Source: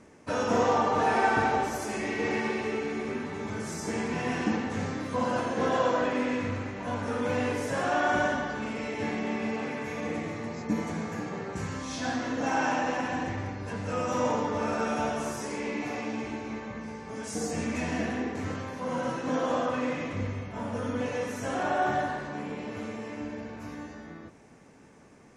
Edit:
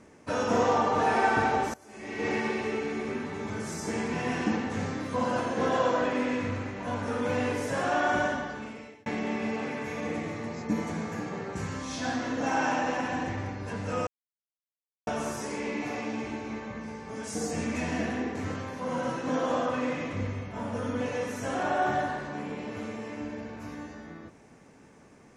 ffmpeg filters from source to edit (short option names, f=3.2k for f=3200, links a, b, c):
-filter_complex "[0:a]asplit=5[a][b][c][d][e];[a]atrim=end=1.74,asetpts=PTS-STARTPTS,afade=t=out:st=1.736:d=0.004:c=hsin:silence=0.0794328[f];[b]atrim=start=1.74:end=9.06,asetpts=PTS-STARTPTS,afade=t=in:d=0.54:c=qua:silence=0.0794328,afade=t=out:st=6.14:d=1.18:c=qsin[g];[c]atrim=start=9.06:end=14.07,asetpts=PTS-STARTPTS,afade=t=in:d=0.004:c=hsin,afade=t=out:st=5.006:d=0.004:c=hsin[h];[d]atrim=start=14.07:end=15.07,asetpts=PTS-STARTPTS,volume=0[i];[e]atrim=start=15.07,asetpts=PTS-STARTPTS,afade=t=in:d=0.004:c=hsin[j];[f][g][h][i][j]concat=n=5:v=0:a=1"